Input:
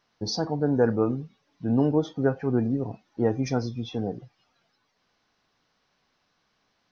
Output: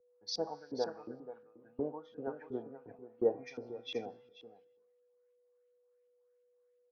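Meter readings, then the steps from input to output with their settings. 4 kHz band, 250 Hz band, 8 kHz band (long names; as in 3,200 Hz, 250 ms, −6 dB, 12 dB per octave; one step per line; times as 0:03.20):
−7.0 dB, −19.0 dB, can't be measured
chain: downward compressor 3 to 1, threshold −30 dBFS, peak gain reduction 10.5 dB
tuned comb filter 51 Hz, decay 1.5 s, harmonics all, mix 60%
auto-filter band-pass saw up 2.8 Hz 360–3,100 Hz
steady tone 490 Hz −57 dBFS
on a send: single-tap delay 483 ms −8 dB
on the sum: multiband upward and downward expander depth 100%
level +4.5 dB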